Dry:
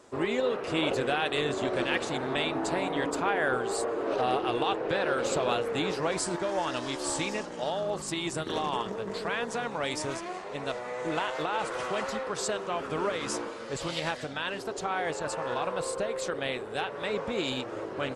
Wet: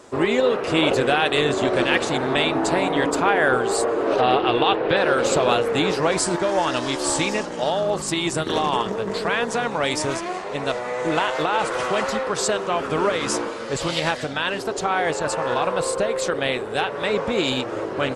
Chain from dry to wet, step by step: 4.2–4.97 resonant high shelf 5100 Hz -10.5 dB, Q 1.5; gain +9 dB

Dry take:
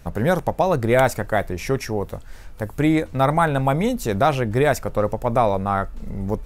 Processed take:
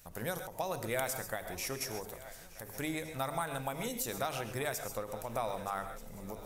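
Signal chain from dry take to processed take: pre-emphasis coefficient 0.8; notches 50/100/150/200/250/300/350/400/450 Hz; on a send: swung echo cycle 1.229 s, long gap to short 3:1, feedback 46%, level -20 dB; on the sum: non-linear reverb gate 0.16 s rising, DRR 10 dB; compressor 2:1, threshold -32 dBFS, peak gain reduction 5 dB; low shelf 350 Hz -5 dB; ending taper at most 130 dB/s

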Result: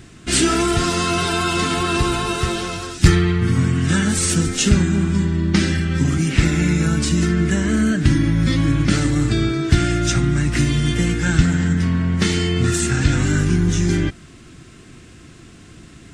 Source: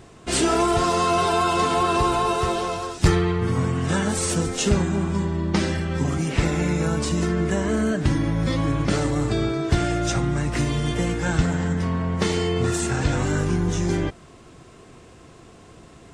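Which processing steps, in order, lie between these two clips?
band shelf 680 Hz -11 dB; gain +6 dB

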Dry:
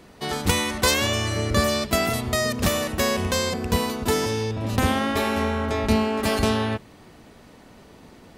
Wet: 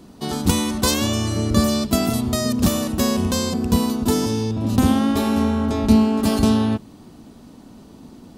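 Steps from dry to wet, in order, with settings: graphic EQ 250/500/2000 Hz +8/-5/-11 dB; gain +2.5 dB

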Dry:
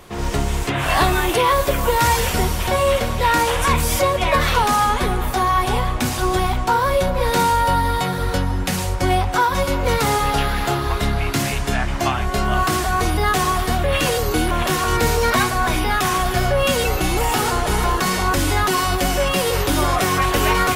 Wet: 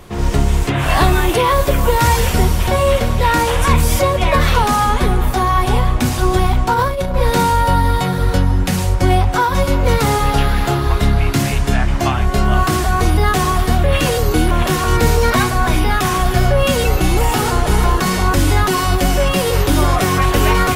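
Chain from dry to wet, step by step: low shelf 300 Hz +7 dB; 6.73–7.14 negative-ratio compressor -17 dBFS, ratio -0.5; gain +1 dB

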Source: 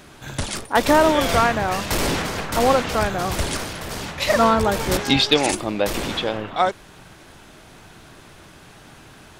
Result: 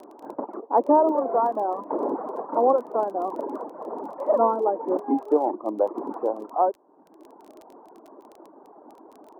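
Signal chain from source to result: elliptic low-pass 990 Hz, stop band 70 dB; reverb removal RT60 0.96 s; steep high-pass 270 Hz 36 dB/oct; in parallel at +1 dB: compressor, threshold -33 dBFS, peak gain reduction 19 dB; on the sum: crackle 17/s -36 dBFS; gain -1.5 dB

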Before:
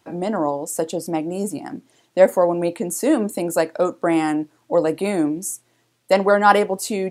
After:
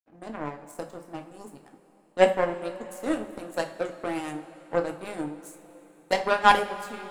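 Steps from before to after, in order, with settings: power-law curve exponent 2; two-slope reverb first 0.32 s, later 4 s, from -18 dB, DRR 4.5 dB; gain -1 dB

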